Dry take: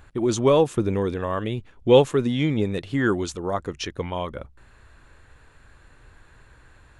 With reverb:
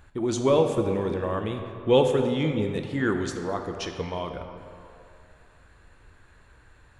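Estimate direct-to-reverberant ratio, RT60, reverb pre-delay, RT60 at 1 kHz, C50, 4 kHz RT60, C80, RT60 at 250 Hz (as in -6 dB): 4.5 dB, 2.7 s, 7 ms, 2.8 s, 6.0 dB, 1.6 s, 7.0 dB, 2.5 s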